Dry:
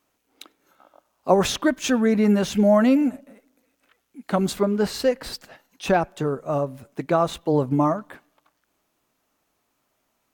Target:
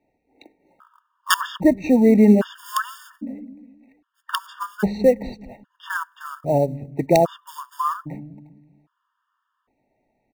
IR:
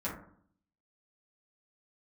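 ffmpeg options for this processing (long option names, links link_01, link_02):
-filter_complex "[0:a]lowpass=1800,acrossover=split=260[link_01][link_02];[link_01]aecho=1:1:195|390|585|780|975:0.398|0.163|0.0669|0.0274|0.0112[link_03];[link_02]acrusher=bits=6:mode=log:mix=0:aa=0.000001[link_04];[link_03][link_04]amix=inputs=2:normalize=0,aeval=exprs='(mod(2.37*val(0)+1,2)-1)/2.37':channel_layout=same,afftfilt=real='re*gt(sin(2*PI*0.62*pts/sr)*(1-2*mod(floor(b*sr/1024/920),2)),0)':imag='im*gt(sin(2*PI*0.62*pts/sr)*(1-2*mod(floor(b*sr/1024/920),2)),0)':win_size=1024:overlap=0.75,volume=5.5dB"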